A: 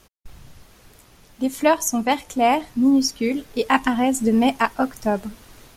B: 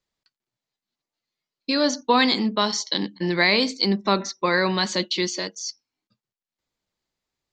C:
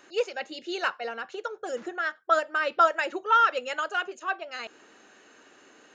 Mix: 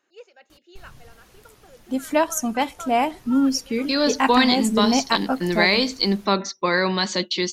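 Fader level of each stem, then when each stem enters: −2.5, +0.5, −17.5 decibels; 0.50, 2.20, 0.00 seconds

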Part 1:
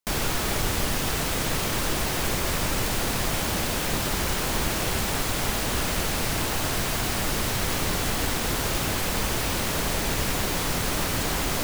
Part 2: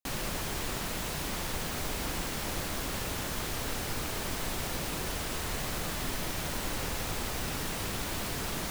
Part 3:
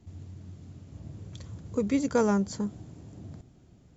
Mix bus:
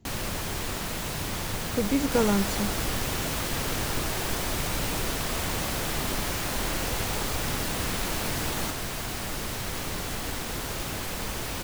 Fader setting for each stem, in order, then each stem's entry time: −6.5, +2.5, +0.5 decibels; 2.05, 0.00, 0.00 seconds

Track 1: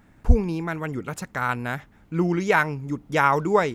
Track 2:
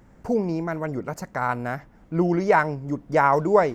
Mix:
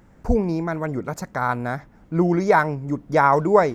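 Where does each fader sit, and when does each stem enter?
−7.5, 0.0 decibels; 0.00, 0.00 seconds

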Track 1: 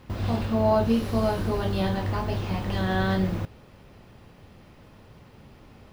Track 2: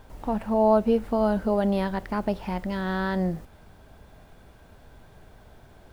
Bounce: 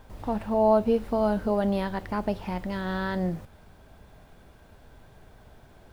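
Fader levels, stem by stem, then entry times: −16.5, −1.5 decibels; 0.00, 0.00 seconds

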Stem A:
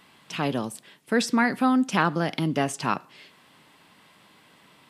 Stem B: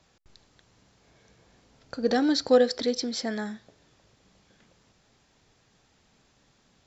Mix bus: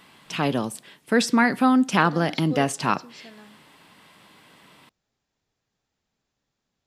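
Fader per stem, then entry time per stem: +3.0, −16.0 decibels; 0.00, 0.00 seconds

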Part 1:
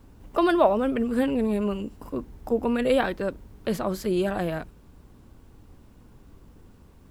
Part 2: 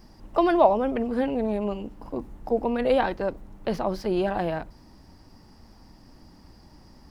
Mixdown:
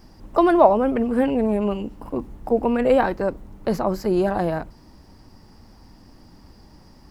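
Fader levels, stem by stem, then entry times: −5.0, +2.0 decibels; 0.00, 0.00 seconds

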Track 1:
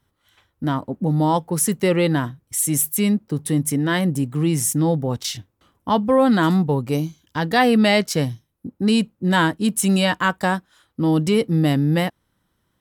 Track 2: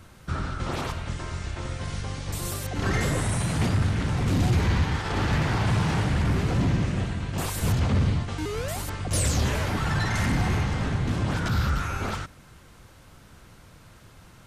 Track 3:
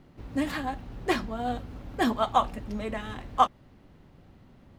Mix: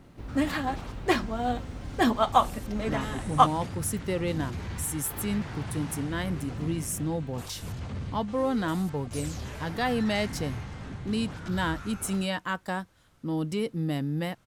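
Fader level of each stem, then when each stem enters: −11.5, −13.0, +2.0 decibels; 2.25, 0.00, 0.00 seconds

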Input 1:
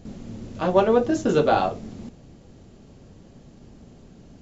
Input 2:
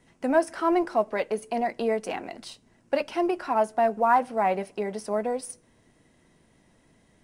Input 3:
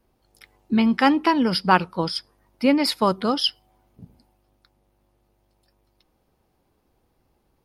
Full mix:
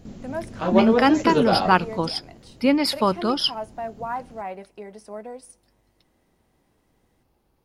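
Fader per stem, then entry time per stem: −1.5, −9.0, −0.5 decibels; 0.00, 0.00, 0.00 seconds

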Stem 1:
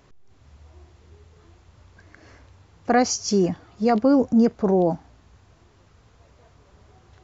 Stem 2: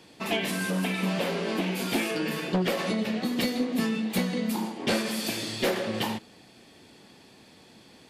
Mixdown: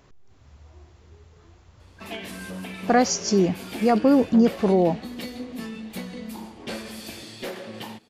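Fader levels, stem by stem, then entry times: 0.0, −7.5 decibels; 0.00, 1.80 seconds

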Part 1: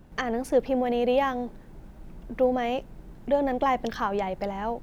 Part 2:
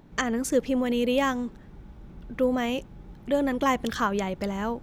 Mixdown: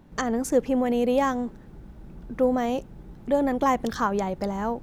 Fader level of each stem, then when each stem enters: −4.5, −2.5 decibels; 0.00, 0.00 seconds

